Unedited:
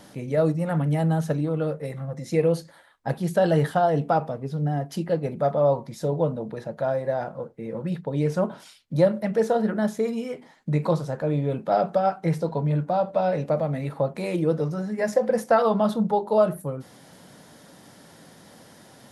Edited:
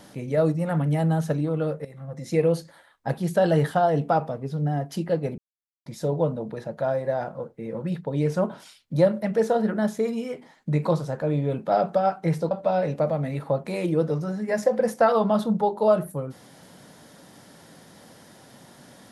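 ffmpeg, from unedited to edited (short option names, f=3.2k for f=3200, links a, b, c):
-filter_complex "[0:a]asplit=5[a][b][c][d][e];[a]atrim=end=1.85,asetpts=PTS-STARTPTS,afade=t=out:st=1.846:d=0.004:c=hsin:silence=0.158489[f];[b]atrim=start=1.85:end=5.38,asetpts=PTS-STARTPTS,afade=t=in:d=0.42:silence=0.158489,afade=t=out:st=3.526:d=0.004:c=hsin[g];[c]atrim=start=5.38:end=5.86,asetpts=PTS-STARTPTS,volume=0[h];[d]atrim=start=5.86:end=12.512,asetpts=PTS-STARTPTS,afade=t=in:d=0.004:c=hsin[i];[e]atrim=start=13.008[j];[f][g][h][i]concat=n=4:v=0:a=1[k];[k][j]acrossfade=d=0.004:c1=hsin:c2=hsin"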